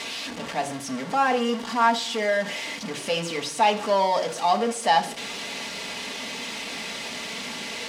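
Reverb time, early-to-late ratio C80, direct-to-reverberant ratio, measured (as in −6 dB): 0.60 s, 17.0 dB, 2.5 dB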